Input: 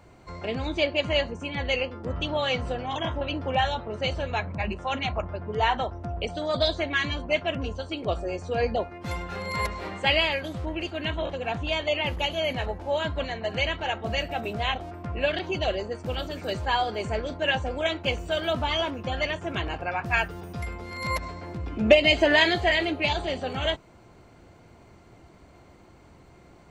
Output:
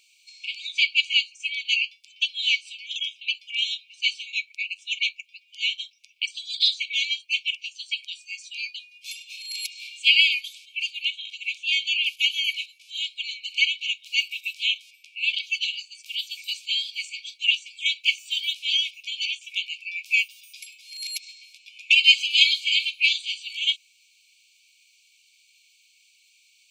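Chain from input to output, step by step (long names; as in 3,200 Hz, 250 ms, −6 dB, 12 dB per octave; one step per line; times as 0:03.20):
linear-phase brick-wall high-pass 2,200 Hz
level +8.5 dB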